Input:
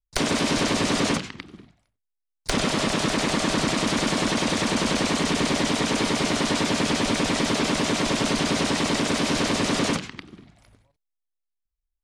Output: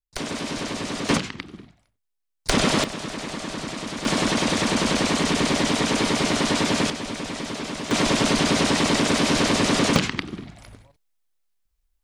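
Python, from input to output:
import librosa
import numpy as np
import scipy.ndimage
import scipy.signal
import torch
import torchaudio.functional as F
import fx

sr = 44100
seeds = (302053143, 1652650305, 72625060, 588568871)

y = fx.gain(x, sr, db=fx.steps((0.0, -6.5), (1.09, 3.5), (2.84, -8.0), (4.05, 1.5), (6.9, -7.5), (7.91, 3.0), (9.96, 11.0)))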